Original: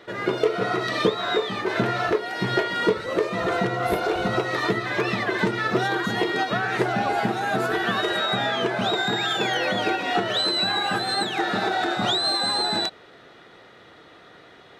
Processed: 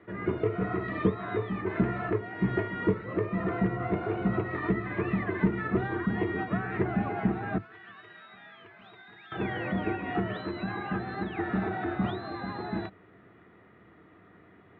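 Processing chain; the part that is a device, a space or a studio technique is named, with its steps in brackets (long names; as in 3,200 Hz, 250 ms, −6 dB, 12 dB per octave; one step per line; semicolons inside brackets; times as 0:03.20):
0:07.58–0:09.32: first difference
sub-octave bass pedal (sub-octave generator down 2 octaves, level −3 dB; loudspeaker in its box 86–2,100 Hz, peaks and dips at 110 Hz +6 dB, 190 Hz +9 dB, 310 Hz +4 dB, 540 Hz −8 dB, 830 Hz −6 dB, 1,500 Hz −6 dB)
level −6 dB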